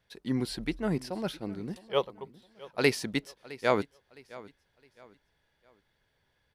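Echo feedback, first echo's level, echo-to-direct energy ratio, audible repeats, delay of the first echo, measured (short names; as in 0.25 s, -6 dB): 33%, -19.5 dB, -19.0 dB, 2, 0.662 s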